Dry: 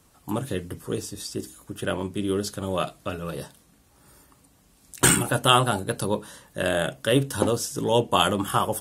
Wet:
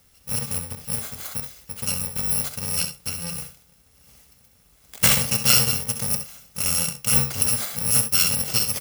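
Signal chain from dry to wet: FFT order left unsorted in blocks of 128 samples; early reflections 66 ms -10 dB, 79 ms -18 dB; gain +1 dB

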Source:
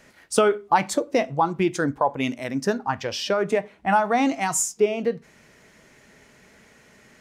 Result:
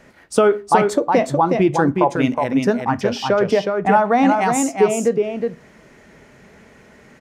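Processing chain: high shelf 2200 Hz -10 dB; in parallel at 0 dB: limiter -15 dBFS, peak gain reduction 7.5 dB; on the sum: echo 0.366 s -4.5 dB; gain +1 dB

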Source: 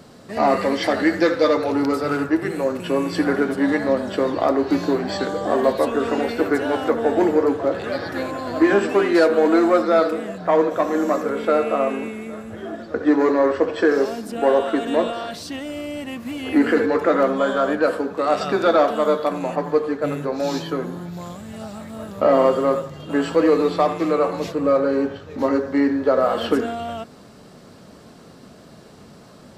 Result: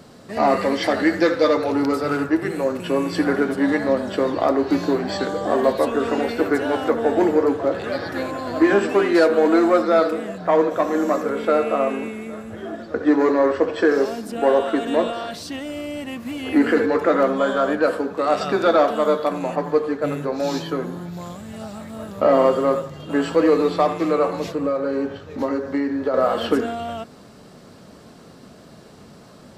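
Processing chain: 24.39–26.14 compressor, threshold -19 dBFS, peak gain reduction 6.5 dB

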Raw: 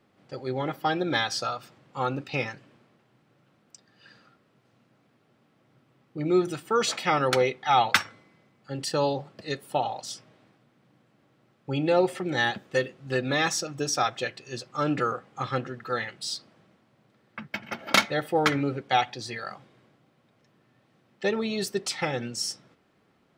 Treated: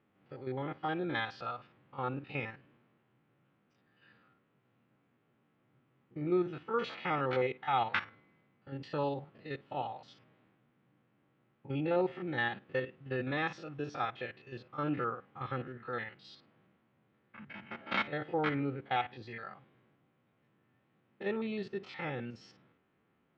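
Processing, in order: stepped spectrum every 50 ms; LPF 3100 Hz 24 dB/oct; bell 630 Hz -4 dB 0.47 oct; gain -6.5 dB

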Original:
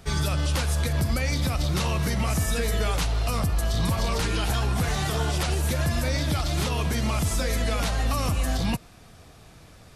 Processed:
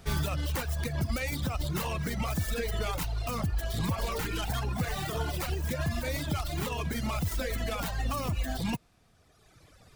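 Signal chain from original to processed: tracing distortion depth 0.22 ms; reverb removal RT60 1.8 s; gain -3 dB

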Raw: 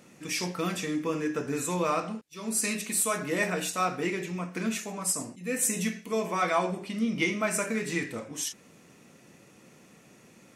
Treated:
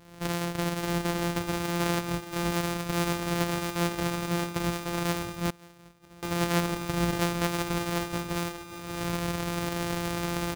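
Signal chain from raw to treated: sample sorter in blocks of 256 samples; recorder AGC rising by 43 dB/s; on a send: feedback echo 0.583 s, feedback 49%, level -11.5 dB; 5.5–6.23 on the sum: flipped gate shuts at -29 dBFS, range -24 dB

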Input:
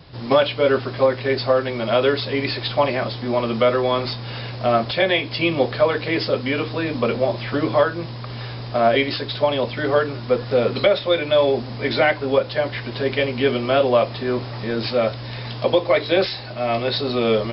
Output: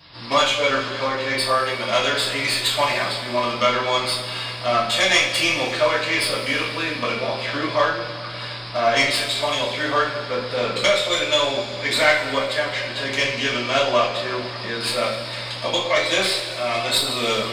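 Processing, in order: tracing distortion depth 0.067 ms; tilt shelf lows -7 dB, about 890 Hz; two-slope reverb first 0.38 s, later 2.7 s, from -15 dB, DRR -6 dB; gain -6.5 dB

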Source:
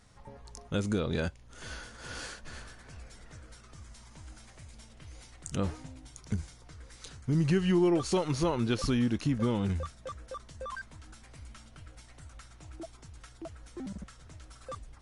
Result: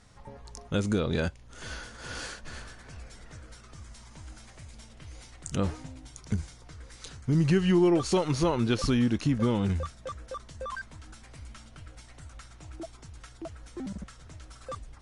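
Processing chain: LPF 11000 Hz; gain +3 dB

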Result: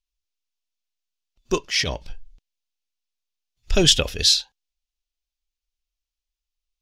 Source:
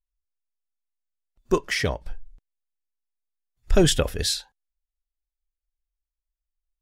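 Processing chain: 1.61–2.1 transient shaper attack -9 dB, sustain +5 dB; band shelf 4000 Hz +11 dB; gain -1.5 dB

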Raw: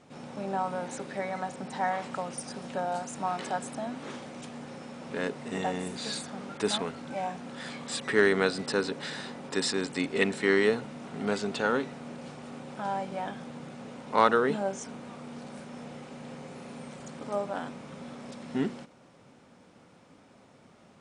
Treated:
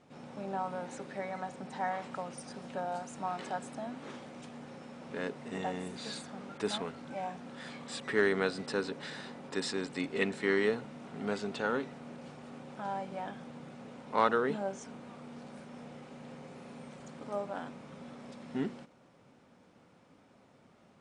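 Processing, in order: high shelf 5900 Hz -6.5 dB; gain -4.5 dB; MP3 56 kbps 32000 Hz

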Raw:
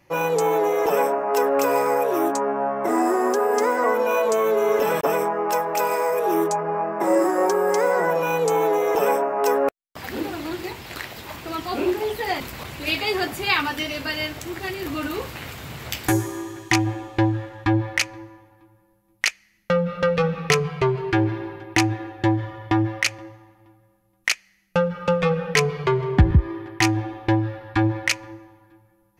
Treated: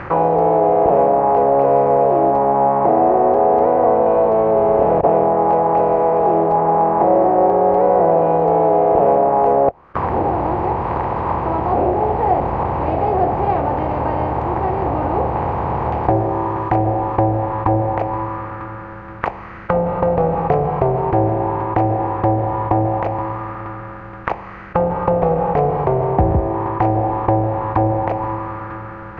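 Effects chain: per-bin compression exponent 0.4; envelope low-pass 710–1600 Hz down, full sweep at -11 dBFS; gain -4.5 dB

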